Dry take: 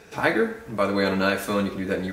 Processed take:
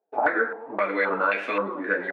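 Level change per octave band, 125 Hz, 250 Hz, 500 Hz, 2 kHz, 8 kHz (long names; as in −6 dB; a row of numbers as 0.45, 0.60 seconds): below −15 dB, −8.0 dB, −2.5 dB, +2.5 dB, below −20 dB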